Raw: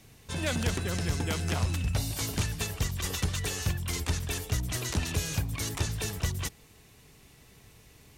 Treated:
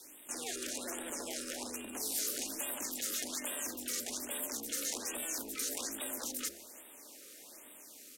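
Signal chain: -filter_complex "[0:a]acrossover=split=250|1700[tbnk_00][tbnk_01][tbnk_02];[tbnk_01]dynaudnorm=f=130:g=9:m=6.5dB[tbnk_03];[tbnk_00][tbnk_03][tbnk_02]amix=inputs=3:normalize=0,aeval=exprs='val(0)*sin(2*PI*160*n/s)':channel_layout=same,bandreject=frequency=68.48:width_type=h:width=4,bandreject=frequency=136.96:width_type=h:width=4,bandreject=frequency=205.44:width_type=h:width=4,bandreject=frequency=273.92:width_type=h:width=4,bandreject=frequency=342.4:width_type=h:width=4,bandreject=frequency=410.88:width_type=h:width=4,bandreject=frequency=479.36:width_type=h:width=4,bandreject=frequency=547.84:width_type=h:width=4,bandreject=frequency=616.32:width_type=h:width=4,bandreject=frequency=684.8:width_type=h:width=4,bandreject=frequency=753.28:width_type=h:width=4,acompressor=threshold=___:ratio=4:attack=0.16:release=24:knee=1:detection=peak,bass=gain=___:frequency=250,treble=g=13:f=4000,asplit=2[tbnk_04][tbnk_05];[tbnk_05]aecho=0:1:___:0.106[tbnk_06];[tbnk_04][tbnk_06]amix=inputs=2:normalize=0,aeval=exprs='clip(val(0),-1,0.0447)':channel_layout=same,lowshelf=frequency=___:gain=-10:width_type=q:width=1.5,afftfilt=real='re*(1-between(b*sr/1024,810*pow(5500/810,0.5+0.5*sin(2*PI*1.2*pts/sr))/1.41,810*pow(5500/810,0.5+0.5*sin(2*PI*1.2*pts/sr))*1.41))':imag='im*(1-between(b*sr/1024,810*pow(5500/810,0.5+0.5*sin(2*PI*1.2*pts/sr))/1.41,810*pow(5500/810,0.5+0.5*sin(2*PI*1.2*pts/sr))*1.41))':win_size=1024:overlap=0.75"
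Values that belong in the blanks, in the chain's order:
-37dB, -12, 332, 190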